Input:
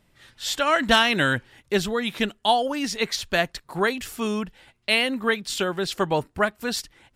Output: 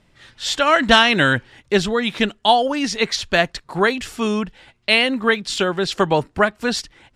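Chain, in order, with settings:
low-pass filter 7,400 Hz 12 dB per octave
0:05.98–0:06.75: multiband upward and downward compressor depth 40%
level +5.5 dB

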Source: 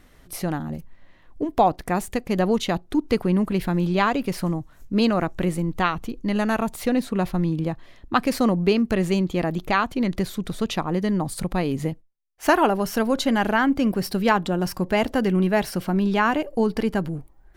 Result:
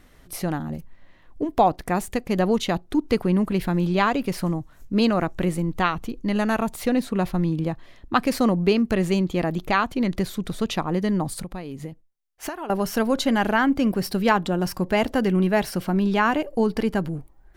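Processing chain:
0:11.34–0:12.70: downward compressor 10 to 1, threshold −30 dBFS, peak gain reduction 17.5 dB

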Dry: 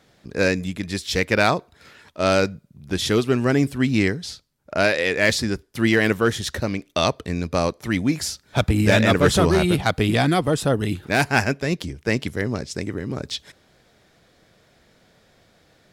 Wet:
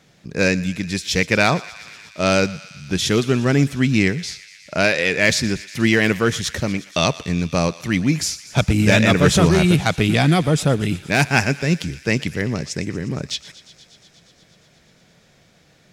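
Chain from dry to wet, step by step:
graphic EQ with 15 bands 160 Hz +8 dB, 2,500 Hz +5 dB, 6,300 Hz +6 dB
feedback echo with a high-pass in the loop 119 ms, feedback 84%, high-pass 1,100 Hz, level −17 dB

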